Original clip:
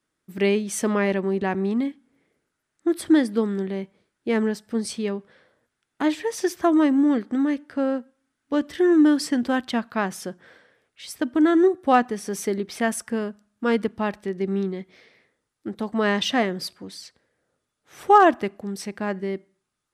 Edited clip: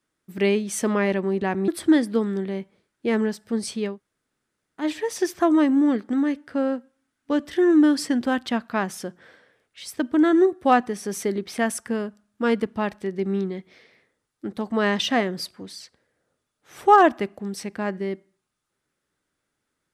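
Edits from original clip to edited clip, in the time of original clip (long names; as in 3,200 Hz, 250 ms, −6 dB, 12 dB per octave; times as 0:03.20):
0:01.68–0:02.90: remove
0:05.15–0:06.05: fill with room tone, crossfade 0.16 s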